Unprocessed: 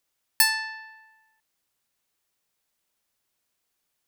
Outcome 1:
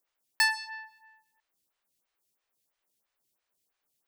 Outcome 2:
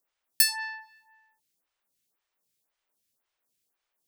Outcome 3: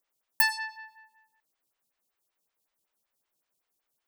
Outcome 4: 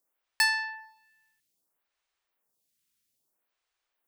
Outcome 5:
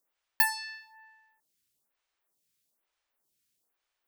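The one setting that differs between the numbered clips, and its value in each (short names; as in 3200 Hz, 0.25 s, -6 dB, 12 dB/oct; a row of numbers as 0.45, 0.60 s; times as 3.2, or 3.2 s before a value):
photocell phaser, rate: 3, 1.9, 5.3, 0.61, 1.1 Hz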